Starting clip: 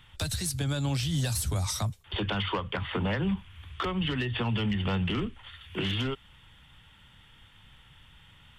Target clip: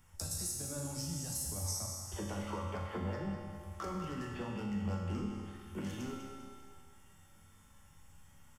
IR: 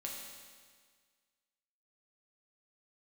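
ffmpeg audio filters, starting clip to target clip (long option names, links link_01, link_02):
-filter_complex "[0:a]firequalizer=gain_entry='entry(690,0);entry(3500,-18);entry(5300,9)':delay=0.05:min_phase=1,acompressor=threshold=-32dB:ratio=6,aecho=1:1:199|398|597|796|995:0.335|0.161|0.0772|0.037|0.0178[link_01];[1:a]atrim=start_sample=2205[link_02];[link_01][link_02]afir=irnorm=-1:irlink=0,volume=-2dB"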